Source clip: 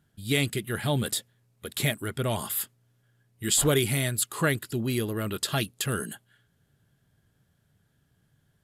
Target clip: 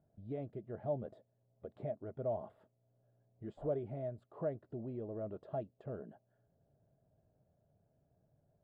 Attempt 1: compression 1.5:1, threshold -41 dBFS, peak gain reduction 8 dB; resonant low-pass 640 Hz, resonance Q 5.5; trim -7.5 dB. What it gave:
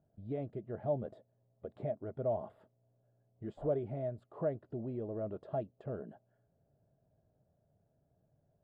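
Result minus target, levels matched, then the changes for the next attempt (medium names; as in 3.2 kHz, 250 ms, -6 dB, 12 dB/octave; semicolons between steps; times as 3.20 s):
compression: peak gain reduction -3 dB
change: compression 1.5:1, threshold -50.5 dBFS, peak gain reduction 11.5 dB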